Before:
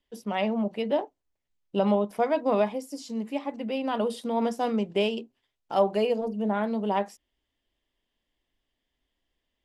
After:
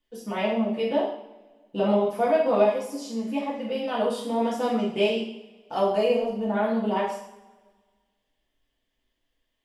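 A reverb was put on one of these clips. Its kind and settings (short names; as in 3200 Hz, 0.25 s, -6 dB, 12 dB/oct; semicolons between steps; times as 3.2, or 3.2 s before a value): two-slope reverb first 0.57 s, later 1.6 s, from -18 dB, DRR -6 dB; gain -4 dB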